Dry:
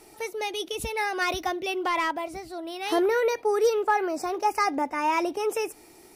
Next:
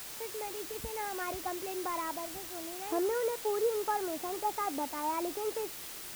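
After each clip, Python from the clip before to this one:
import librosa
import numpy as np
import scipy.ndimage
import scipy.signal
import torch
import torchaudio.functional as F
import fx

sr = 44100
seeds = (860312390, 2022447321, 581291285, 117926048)

y = scipy.signal.sosfilt(scipy.signal.butter(2, 1300.0, 'lowpass', fs=sr, output='sos'), x)
y = fx.quant_dither(y, sr, seeds[0], bits=6, dither='triangular')
y = y * 10.0 ** (-8.0 / 20.0)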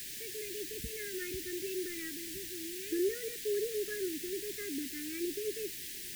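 y = scipy.signal.sosfilt(scipy.signal.cheby1(4, 1.0, [410.0, 1700.0], 'bandstop', fs=sr, output='sos'), x)
y = y * 10.0 ** (1.5 / 20.0)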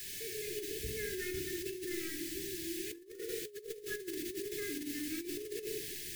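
y = fx.room_shoebox(x, sr, seeds[1], volume_m3=3300.0, walls='furnished', distance_m=4.1)
y = fx.over_compress(y, sr, threshold_db=-34.0, ratio=-0.5)
y = y * 10.0 ** (-5.5 / 20.0)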